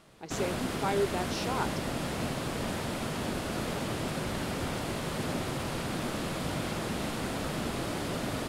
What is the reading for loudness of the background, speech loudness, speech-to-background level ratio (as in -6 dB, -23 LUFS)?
-33.5 LUFS, -34.5 LUFS, -1.0 dB